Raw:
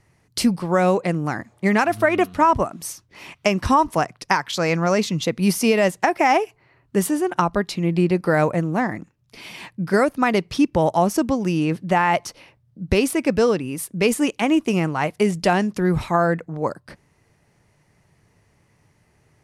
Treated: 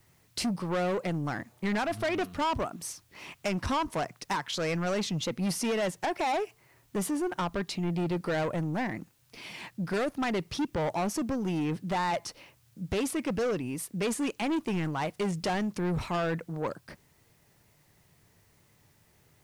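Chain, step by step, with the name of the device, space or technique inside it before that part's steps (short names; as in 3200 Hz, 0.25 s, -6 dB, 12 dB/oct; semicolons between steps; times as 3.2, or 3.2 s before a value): compact cassette (soft clip -20.5 dBFS, distortion -8 dB; LPF 11000 Hz 12 dB/oct; wow and flutter; white noise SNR 37 dB); gain -5 dB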